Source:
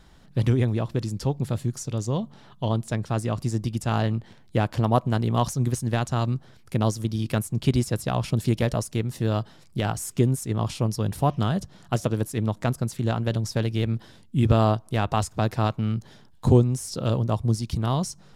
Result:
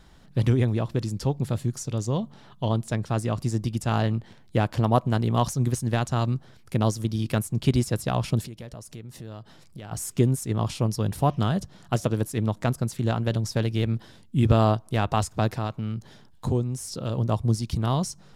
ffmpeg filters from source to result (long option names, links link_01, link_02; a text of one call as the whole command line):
ffmpeg -i in.wav -filter_complex "[0:a]asplit=3[link_01][link_02][link_03];[link_01]afade=type=out:start_time=8.45:duration=0.02[link_04];[link_02]acompressor=threshold=-39dB:ratio=4:attack=3.2:release=140:knee=1:detection=peak,afade=type=in:start_time=8.45:duration=0.02,afade=type=out:start_time=9.91:duration=0.02[link_05];[link_03]afade=type=in:start_time=9.91:duration=0.02[link_06];[link_04][link_05][link_06]amix=inputs=3:normalize=0,asettb=1/sr,asplit=3[link_07][link_08][link_09];[link_07]atrim=end=15.584[link_10];[link_08]atrim=start=15.58:end=17.18,asetpts=PTS-STARTPTS,afade=type=in:duration=0.004:curve=qsin,afade=type=out:start_time=1.596:duration=0.004:curve=qsin,acompressor=threshold=-34dB:ratio=1.5:attack=3.2:release=140:knee=1:detection=peak[link_11];[link_09]atrim=start=17.176[link_12];[link_10][link_11]acrossfade=duration=0.004:curve1=hsin:curve2=qsin[link_13];[link_13][link_12]acrossfade=duration=0.004:curve1=qsin:curve2=hsin" out.wav